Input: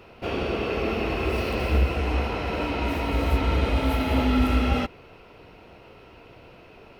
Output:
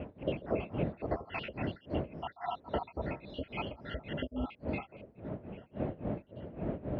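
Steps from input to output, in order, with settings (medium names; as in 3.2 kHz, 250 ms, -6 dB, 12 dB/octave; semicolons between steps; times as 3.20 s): random holes in the spectrogram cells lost 73%; wind noise 290 Hz -32 dBFS; compression 10:1, threshold -28 dBFS, peak gain reduction 14 dB; high-pass 62 Hz; peaking EQ 600 Hz +9.5 dB 0.32 oct; tremolo 3.6 Hz, depth 90%; low-pass 3 kHz 24 dB/octave; peaking EQ 1.2 kHz -3.5 dB 0.62 oct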